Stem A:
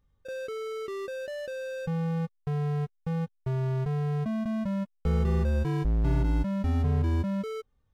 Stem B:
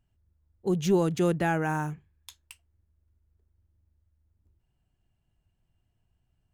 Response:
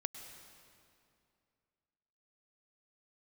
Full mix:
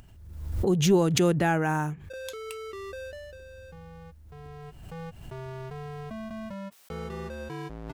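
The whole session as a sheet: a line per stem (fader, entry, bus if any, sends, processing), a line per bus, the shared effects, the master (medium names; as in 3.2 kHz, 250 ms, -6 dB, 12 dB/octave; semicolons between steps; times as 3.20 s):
3.04 s -0.5 dB -> 3.41 s -10 dB -> 4.27 s -10 dB -> 5.01 s -1 dB, 1.85 s, no send, high-pass 520 Hz 6 dB/octave
+2.0 dB, 0.00 s, no send, upward compressor, threshold -39 dBFS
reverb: none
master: swell ahead of each attack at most 54 dB/s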